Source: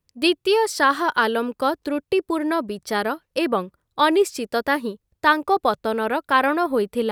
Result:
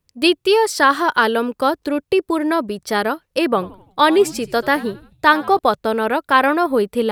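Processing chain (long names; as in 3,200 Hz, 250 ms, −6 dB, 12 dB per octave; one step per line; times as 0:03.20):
0:03.47–0:05.59: echo with shifted repeats 84 ms, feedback 48%, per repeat −90 Hz, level −19 dB
level +4 dB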